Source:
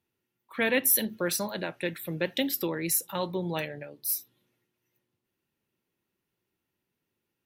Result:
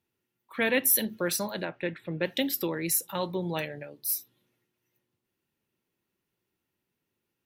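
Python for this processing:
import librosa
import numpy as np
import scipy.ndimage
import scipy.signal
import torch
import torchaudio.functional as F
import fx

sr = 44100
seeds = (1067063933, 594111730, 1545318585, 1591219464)

y = fx.lowpass(x, sr, hz=2600.0, slope=12, at=(1.65, 2.23))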